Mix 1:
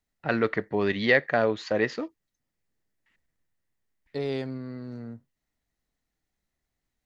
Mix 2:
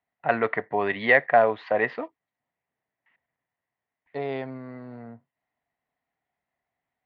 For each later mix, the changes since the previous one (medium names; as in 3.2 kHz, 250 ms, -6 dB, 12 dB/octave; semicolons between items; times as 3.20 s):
master: add cabinet simulation 140–3100 Hz, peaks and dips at 200 Hz -6 dB, 330 Hz -6 dB, 710 Hz +10 dB, 1 kHz +7 dB, 2 kHz +4 dB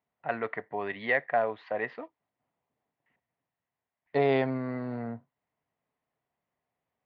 first voice -8.5 dB; second voice +6.0 dB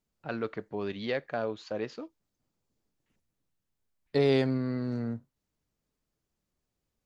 first voice: add peaking EQ 1.9 kHz -11.5 dB 0.29 oct; master: remove cabinet simulation 140–3100 Hz, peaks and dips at 200 Hz -6 dB, 330 Hz -6 dB, 710 Hz +10 dB, 1 kHz +7 dB, 2 kHz +4 dB